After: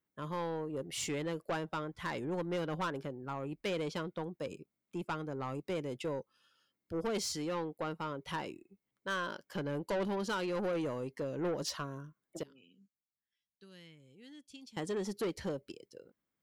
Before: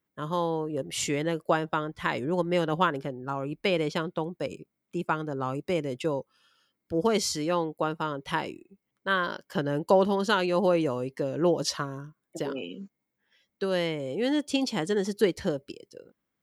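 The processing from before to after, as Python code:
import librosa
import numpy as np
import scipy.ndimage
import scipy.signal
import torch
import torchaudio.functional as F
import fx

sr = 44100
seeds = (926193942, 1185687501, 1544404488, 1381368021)

y = fx.tone_stack(x, sr, knobs='6-0-2', at=(12.43, 14.77))
y = 10.0 ** (-24.0 / 20.0) * np.tanh(y / 10.0 ** (-24.0 / 20.0))
y = y * librosa.db_to_amplitude(-6.0)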